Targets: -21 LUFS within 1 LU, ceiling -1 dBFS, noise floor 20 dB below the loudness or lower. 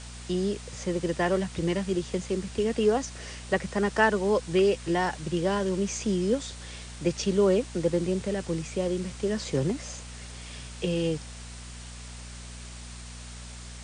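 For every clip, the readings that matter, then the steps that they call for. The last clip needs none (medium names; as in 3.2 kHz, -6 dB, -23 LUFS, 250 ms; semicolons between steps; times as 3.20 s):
hum 60 Hz; highest harmonic 240 Hz; hum level -41 dBFS; noise floor -42 dBFS; noise floor target -48 dBFS; loudness -28.0 LUFS; peak level -9.5 dBFS; loudness target -21.0 LUFS
-> de-hum 60 Hz, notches 4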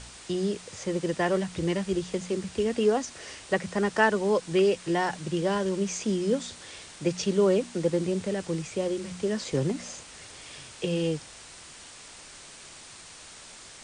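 hum not found; noise floor -47 dBFS; noise floor target -48 dBFS
-> noise print and reduce 6 dB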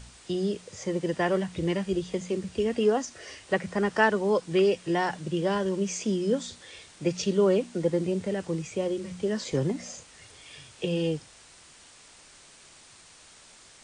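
noise floor -53 dBFS; loudness -28.0 LUFS; peak level -9.5 dBFS; loudness target -21.0 LUFS
-> trim +7 dB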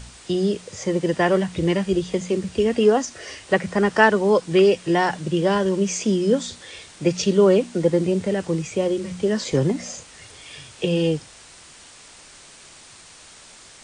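loudness -21.0 LUFS; peak level -2.5 dBFS; noise floor -46 dBFS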